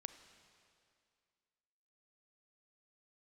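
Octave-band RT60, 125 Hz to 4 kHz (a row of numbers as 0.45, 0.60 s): 2.2, 2.3, 2.3, 2.3, 2.2, 2.2 s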